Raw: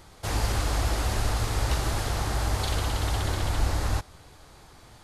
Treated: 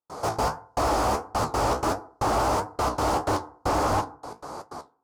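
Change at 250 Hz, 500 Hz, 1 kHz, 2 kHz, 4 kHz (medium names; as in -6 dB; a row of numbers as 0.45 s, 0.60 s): +5.0 dB, +8.5 dB, +9.5 dB, -0.5 dB, -3.5 dB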